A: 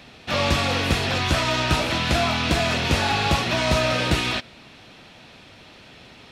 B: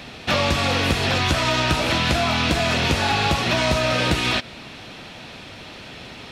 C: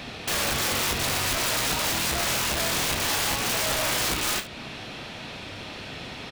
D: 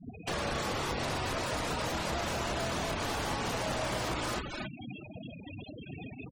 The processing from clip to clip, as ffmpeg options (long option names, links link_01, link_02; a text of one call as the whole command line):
ffmpeg -i in.wav -af "acompressor=threshold=-25dB:ratio=6,volume=8dB" out.wav
ffmpeg -i in.wav -filter_complex "[0:a]alimiter=limit=-15dB:level=0:latency=1:release=274,aeval=exprs='(mod(11.2*val(0)+1,2)-1)/11.2':channel_layout=same,asplit=2[link_01][link_02];[link_02]aecho=0:1:30|72:0.376|0.2[link_03];[link_01][link_03]amix=inputs=2:normalize=0" out.wav
ffmpeg -i in.wav -filter_complex "[0:a]aecho=1:1:221.6|268.2:0.355|0.447,afftfilt=real='re*gte(hypot(re,im),0.0447)':imag='im*gte(hypot(re,im),0.0447)':win_size=1024:overlap=0.75,acrossover=split=210|470|1300[link_01][link_02][link_03][link_04];[link_01]acompressor=threshold=-38dB:ratio=4[link_05];[link_02]acompressor=threshold=-41dB:ratio=4[link_06];[link_03]acompressor=threshold=-36dB:ratio=4[link_07];[link_04]acompressor=threshold=-41dB:ratio=4[link_08];[link_05][link_06][link_07][link_08]amix=inputs=4:normalize=0" out.wav